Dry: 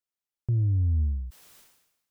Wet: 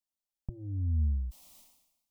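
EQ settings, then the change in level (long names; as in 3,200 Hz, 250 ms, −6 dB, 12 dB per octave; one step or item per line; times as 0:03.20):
low-shelf EQ 100 Hz +8.5 dB
phaser with its sweep stopped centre 420 Hz, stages 6
−1.5 dB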